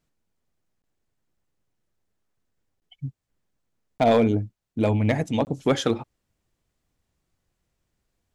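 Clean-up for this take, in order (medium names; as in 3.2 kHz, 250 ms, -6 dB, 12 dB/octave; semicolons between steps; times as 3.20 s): clip repair -11.5 dBFS; interpolate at 0.82/2.80/3.98/5.45 s, 19 ms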